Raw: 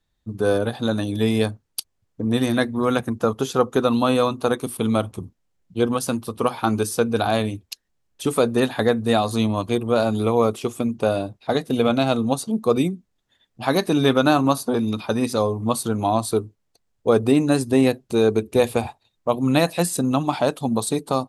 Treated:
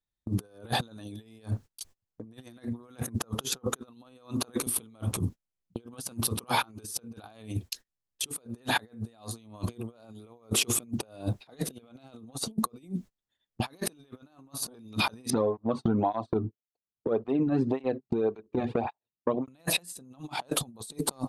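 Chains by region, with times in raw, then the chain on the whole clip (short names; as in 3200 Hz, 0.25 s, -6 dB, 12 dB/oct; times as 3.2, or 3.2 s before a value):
15.3–19.48 tape spacing loss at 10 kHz 45 dB + compressor 12:1, threshold -28 dBFS + tape flanging out of phase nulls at 1.8 Hz, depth 2.2 ms
whole clip: gate -42 dBFS, range -29 dB; high shelf 4100 Hz +4 dB; negative-ratio compressor -34 dBFS, ratio -0.5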